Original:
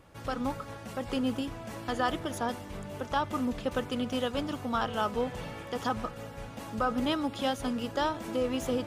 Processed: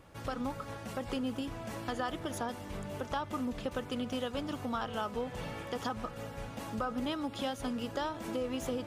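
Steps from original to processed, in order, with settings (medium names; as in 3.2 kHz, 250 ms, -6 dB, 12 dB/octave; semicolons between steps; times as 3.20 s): compression 2.5:1, threshold -34 dBFS, peak gain reduction 7.5 dB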